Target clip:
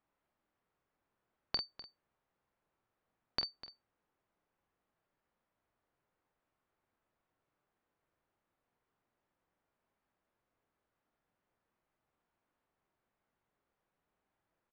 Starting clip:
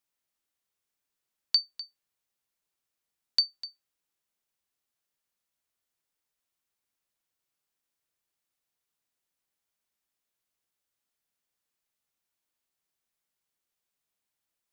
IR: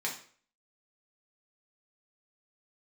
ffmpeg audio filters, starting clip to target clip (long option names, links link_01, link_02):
-filter_complex "[0:a]lowpass=1300,asplit=2[link_01][link_02];[link_02]aecho=0:1:29|46:0.2|0.473[link_03];[link_01][link_03]amix=inputs=2:normalize=0,volume=10dB"